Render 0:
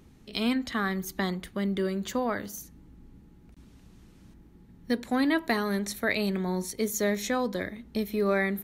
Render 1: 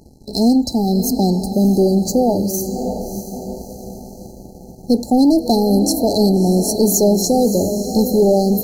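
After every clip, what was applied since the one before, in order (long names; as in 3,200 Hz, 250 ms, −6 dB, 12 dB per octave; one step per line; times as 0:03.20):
feedback delay with all-pass diffusion 633 ms, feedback 50%, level −10 dB
leveller curve on the samples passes 2
brick-wall band-stop 900–4,000 Hz
level +8.5 dB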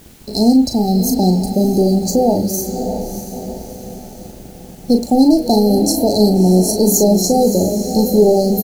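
in parallel at −11 dB: bit-depth reduction 6 bits, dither triangular
on the sum: double-tracking delay 38 ms −7 dB
level −1 dB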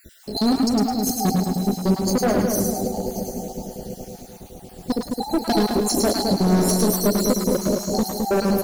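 time-frequency cells dropped at random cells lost 52%
hard clipping −13.5 dBFS, distortion −9 dB
on a send: echo with a time of its own for lows and highs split 800 Hz, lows 214 ms, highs 106 ms, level −3.5 dB
on the sum: level −2.5 dB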